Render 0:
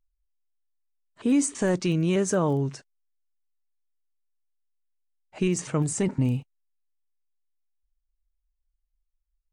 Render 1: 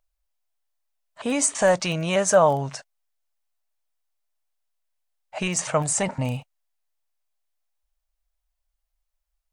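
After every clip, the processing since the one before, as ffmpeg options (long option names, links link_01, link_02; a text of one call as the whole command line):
ffmpeg -i in.wav -af "lowshelf=frequency=480:width_type=q:width=3:gain=-9,volume=7.5dB" out.wav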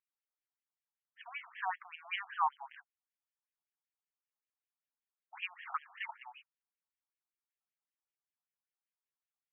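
ffmpeg -i in.wav -af "afftfilt=real='re*between(b*sr/1024,950*pow(2400/950,0.5+0.5*sin(2*PI*5.2*pts/sr))/1.41,950*pow(2400/950,0.5+0.5*sin(2*PI*5.2*pts/sr))*1.41)':imag='im*between(b*sr/1024,950*pow(2400/950,0.5+0.5*sin(2*PI*5.2*pts/sr))/1.41,950*pow(2400/950,0.5+0.5*sin(2*PI*5.2*pts/sr))*1.41)':win_size=1024:overlap=0.75,volume=-7dB" out.wav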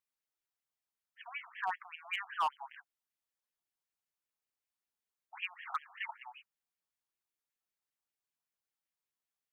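ffmpeg -i in.wav -af "volume=27.5dB,asoftclip=hard,volume=-27.5dB,volume=1dB" out.wav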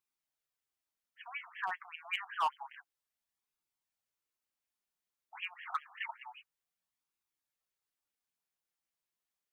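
ffmpeg -i in.wav -af "flanger=delay=0.8:depth=5.2:regen=-47:speed=0.28:shape=sinusoidal,volume=4.5dB" out.wav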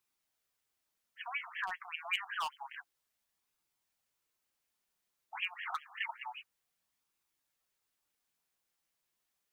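ffmpeg -i in.wav -filter_complex "[0:a]acrossover=split=140|3000[link_01][link_02][link_03];[link_02]acompressor=threshold=-44dB:ratio=5[link_04];[link_01][link_04][link_03]amix=inputs=3:normalize=0,volume=6.5dB" out.wav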